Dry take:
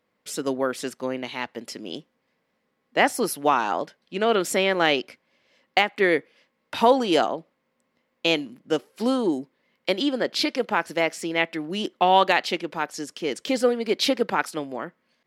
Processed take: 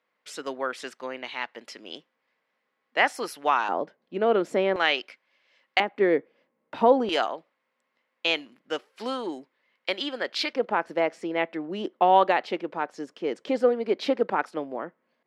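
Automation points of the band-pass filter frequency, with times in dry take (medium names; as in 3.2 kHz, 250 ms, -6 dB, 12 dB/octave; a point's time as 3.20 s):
band-pass filter, Q 0.58
1.7 kHz
from 3.69 s 460 Hz
from 4.76 s 2 kHz
from 5.80 s 410 Hz
from 7.09 s 1.8 kHz
from 10.53 s 590 Hz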